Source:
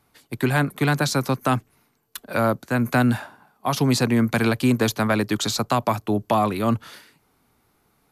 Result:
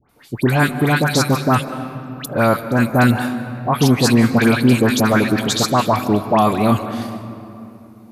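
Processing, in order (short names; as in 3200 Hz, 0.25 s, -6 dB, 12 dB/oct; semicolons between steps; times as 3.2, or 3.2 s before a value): dispersion highs, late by 94 ms, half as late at 1500 Hz; on a send: reverb RT60 2.9 s, pre-delay 0.138 s, DRR 11 dB; on the sum: gain +5.5 dB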